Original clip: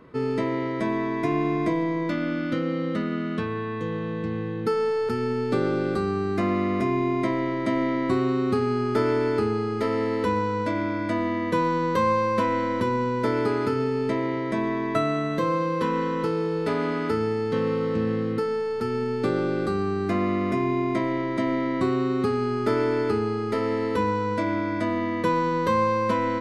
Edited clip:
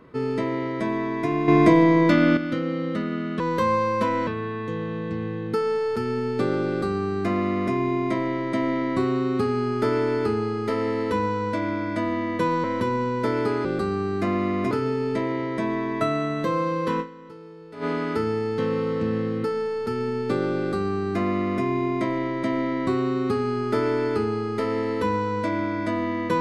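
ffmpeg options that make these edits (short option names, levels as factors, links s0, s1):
-filter_complex "[0:a]asplit=10[s0][s1][s2][s3][s4][s5][s6][s7][s8][s9];[s0]atrim=end=1.482[s10];[s1]atrim=start=1.478:end=2.372,asetpts=PTS-STARTPTS,volume=2.82[s11];[s2]atrim=start=2.368:end=3.402[s12];[s3]atrim=start=11.768:end=12.642[s13];[s4]atrim=start=3.398:end=11.772[s14];[s5]atrim=start=12.638:end=13.652[s15];[s6]atrim=start=5.808:end=6.872[s16];[s7]atrim=start=13.648:end=16.24,asetpts=PTS-STARTPTS,afade=t=out:st=2.292:d=0.3:c=exp:silence=0.133352[s17];[s8]atrim=start=16.24:end=16.48,asetpts=PTS-STARTPTS,volume=0.133[s18];[s9]atrim=start=16.48,asetpts=PTS-STARTPTS,afade=t=in:d=0.3:c=exp:silence=0.133352[s19];[s10][s11]acrossfade=d=0.004:c1=hsin:c2=hsin[s20];[s20][s12]acrossfade=d=0.004:c1=hsin:c2=hsin[s21];[s21][s13]acrossfade=d=0.004:c1=hsin:c2=hsin[s22];[s22][s14]acrossfade=d=0.004:c1=hsin:c2=hsin[s23];[s23][s15]acrossfade=d=0.004:c1=hsin:c2=hsin[s24];[s24][s16]acrossfade=d=0.004:c1=hsin:c2=hsin[s25];[s17][s18][s19]concat=n=3:v=0:a=1[s26];[s25][s26]acrossfade=d=0.004:c1=hsin:c2=hsin"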